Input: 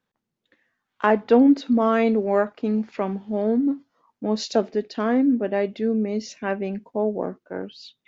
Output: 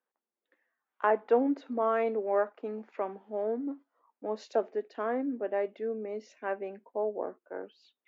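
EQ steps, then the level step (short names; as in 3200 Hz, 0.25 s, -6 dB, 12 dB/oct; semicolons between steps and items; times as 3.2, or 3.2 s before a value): Bessel high-pass 480 Hz, order 4; bell 4700 Hz -15 dB 1.8 oct; high shelf 6000 Hz -8.5 dB; -3.5 dB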